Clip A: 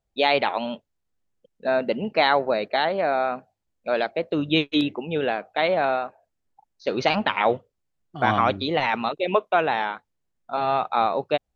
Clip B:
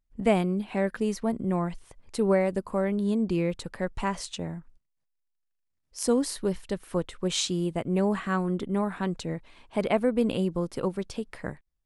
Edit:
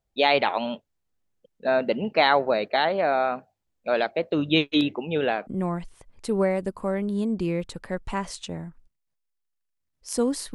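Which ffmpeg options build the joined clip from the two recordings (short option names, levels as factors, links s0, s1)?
-filter_complex "[0:a]apad=whole_dur=10.54,atrim=end=10.54,atrim=end=5.472[s0];[1:a]atrim=start=1.368:end=6.44[s1];[s0][s1]acrossfade=d=0.004:c1=hsin:c2=hsin"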